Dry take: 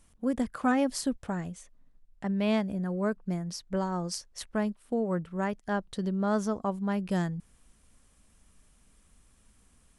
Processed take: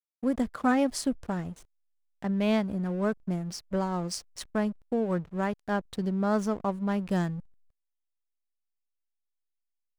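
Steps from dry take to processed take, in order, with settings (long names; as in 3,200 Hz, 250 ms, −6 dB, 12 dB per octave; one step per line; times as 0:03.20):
slack as between gear wheels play −41.5 dBFS
level +1.5 dB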